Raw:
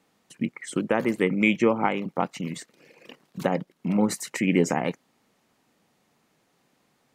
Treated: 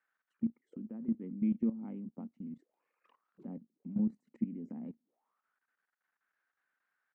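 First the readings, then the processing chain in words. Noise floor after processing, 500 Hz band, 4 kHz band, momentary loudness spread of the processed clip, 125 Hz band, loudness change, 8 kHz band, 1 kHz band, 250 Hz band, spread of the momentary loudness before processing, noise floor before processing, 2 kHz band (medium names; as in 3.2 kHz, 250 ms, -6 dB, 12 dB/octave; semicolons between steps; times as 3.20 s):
under -85 dBFS, -26.0 dB, under -40 dB, 14 LU, -13.5 dB, -12.5 dB, under -40 dB, under -30 dB, -9.5 dB, 12 LU, -69 dBFS, under -40 dB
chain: auto-wah 230–1600 Hz, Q 8, down, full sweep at -29 dBFS; level held to a coarse grid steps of 14 dB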